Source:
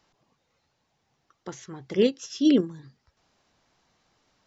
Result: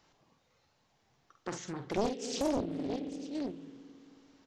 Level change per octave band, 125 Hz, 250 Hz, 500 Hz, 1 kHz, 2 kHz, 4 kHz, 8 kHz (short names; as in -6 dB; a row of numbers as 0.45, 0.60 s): -5.0 dB, -10.0 dB, -7.5 dB, +9.0 dB, -4.5 dB, -7.5 dB, n/a